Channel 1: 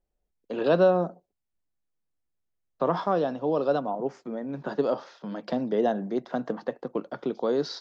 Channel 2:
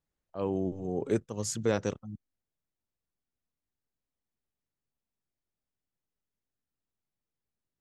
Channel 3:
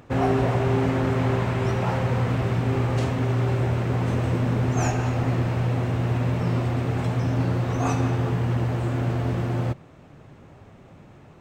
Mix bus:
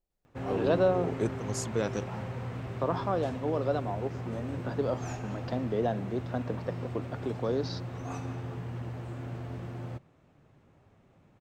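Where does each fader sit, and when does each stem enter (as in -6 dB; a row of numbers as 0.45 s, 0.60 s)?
-5.0 dB, -2.5 dB, -14.0 dB; 0.00 s, 0.10 s, 0.25 s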